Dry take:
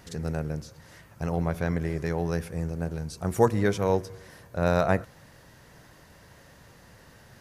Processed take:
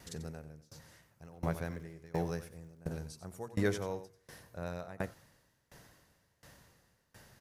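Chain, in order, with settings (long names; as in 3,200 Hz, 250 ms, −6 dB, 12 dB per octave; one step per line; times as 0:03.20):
high-shelf EQ 4,500 Hz +6 dB
0:01.23–0:02.80: surface crackle 64 per second −38 dBFS
single-tap delay 91 ms −9 dB
tremolo with a ramp in dB decaying 1.4 Hz, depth 25 dB
level −3.5 dB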